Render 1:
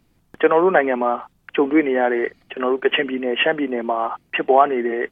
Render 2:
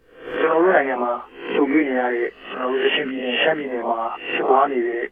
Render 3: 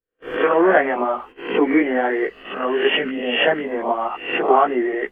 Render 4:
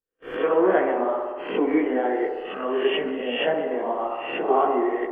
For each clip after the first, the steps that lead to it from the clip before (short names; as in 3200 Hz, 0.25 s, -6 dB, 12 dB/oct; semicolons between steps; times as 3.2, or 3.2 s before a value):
spectral swells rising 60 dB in 0.55 s; chorus voices 6, 1.2 Hz, delay 17 ms, depth 3 ms
gate -39 dBFS, range -36 dB; gain +1 dB
dynamic EQ 1800 Hz, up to -6 dB, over -31 dBFS, Q 0.95; band-limited delay 63 ms, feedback 77%, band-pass 660 Hz, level -5 dB; gain -5 dB